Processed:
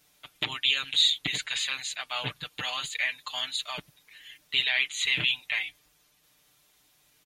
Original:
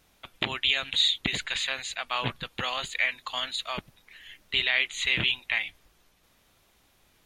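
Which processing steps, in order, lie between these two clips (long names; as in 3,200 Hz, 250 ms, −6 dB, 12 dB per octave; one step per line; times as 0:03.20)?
high-pass filter 46 Hz
high-shelf EQ 2,700 Hz +10 dB
comb filter 6.7 ms, depth 87%
level −8 dB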